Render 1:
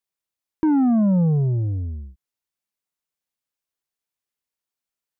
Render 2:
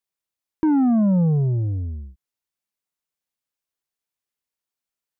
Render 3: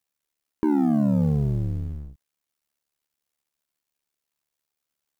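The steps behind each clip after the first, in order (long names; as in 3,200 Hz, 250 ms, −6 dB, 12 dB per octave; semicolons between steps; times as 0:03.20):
no processing that can be heard
mu-law and A-law mismatch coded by mu; amplitude modulation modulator 73 Hz, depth 75%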